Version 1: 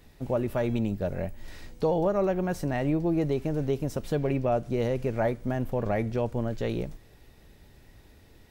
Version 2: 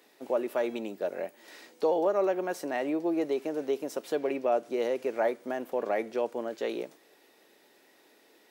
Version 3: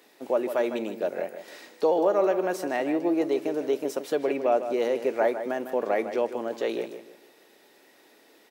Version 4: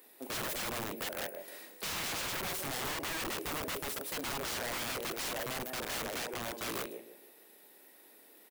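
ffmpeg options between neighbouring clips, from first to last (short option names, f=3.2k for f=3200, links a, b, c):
-af "highpass=f=310:w=0.5412,highpass=f=310:w=1.3066"
-filter_complex "[0:a]asplit=2[a][b];[b]adelay=154,lowpass=f=4.3k:p=1,volume=-10dB,asplit=2[c][d];[d]adelay=154,lowpass=f=4.3k:p=1,volume=0.32,asplit=2[e][f];[f]adelay=154,lowpass=f=4.3k:p=1,volume=0.32,asplit=2[g][h];[h]adelay=154,lowpass=f=4.3k:p=1,volume=0.32[i];[a][c][e][g][i]amix=inputs=5:normalize=0,volume=3.5dB"
-filter_complex "[0:a]asplit=2[a][b];[b]adelay=43,volume=-14dB[c];[a][c]amix=inputs=2:normalize=0,aexciter=amount=4.5:drive=5.7:freq=8.7k,aeval=exprs='(mod(21.1*val(0)+1,2)-1)/21.1':c=same,volume=-5.5dB"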